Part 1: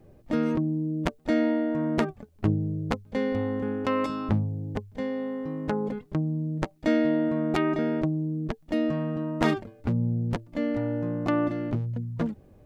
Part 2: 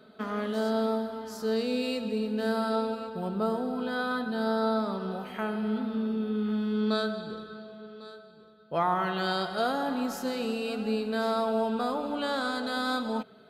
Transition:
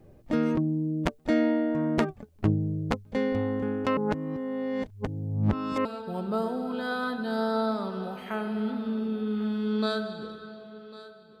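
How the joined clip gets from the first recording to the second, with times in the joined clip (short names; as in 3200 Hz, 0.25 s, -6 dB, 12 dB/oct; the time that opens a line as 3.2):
part 1
3.97–5.85 reverse
5.85 switch to part 2 from 2.93 s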